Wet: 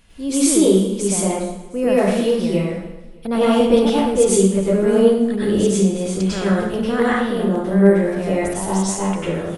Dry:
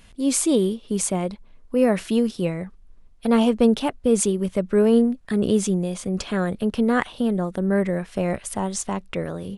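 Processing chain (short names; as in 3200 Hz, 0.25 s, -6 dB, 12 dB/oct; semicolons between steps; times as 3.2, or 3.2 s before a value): on a send: feedback echo 0.301 s, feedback 41%, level -21.5 dB; on the sum: plate-style reverb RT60 0.79 s, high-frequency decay 0.85×, pre-delay 85 ms, DRR -8.5 dB; gain -4 dB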